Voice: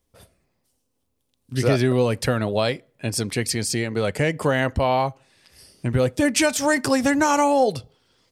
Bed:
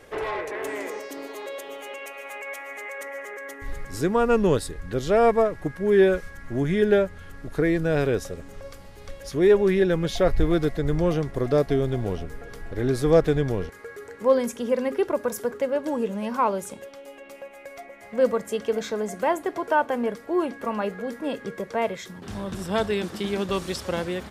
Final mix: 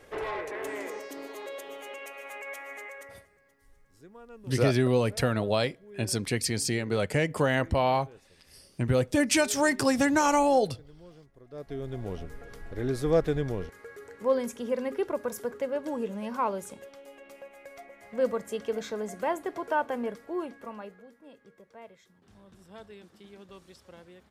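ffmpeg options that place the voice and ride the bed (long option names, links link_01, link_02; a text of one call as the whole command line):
ffmpeg -i stem1.wav -i stem2.wav -filter_complex "[0:a]adelay=2950,volume=-4.5dB[link_01];[1:a]volume=18dB,afade=type=out:start_time=2.75:duration=0.52:silence=0.0630957,afade=type=in:start_time=11.49:duration=0.76:silence=0.0749894,afade=type=out:start_time=19.97:duration=1.14:silence=0.141254[link_02];[link_01][link_02]amix=inputs=2:normalize=0" out.wav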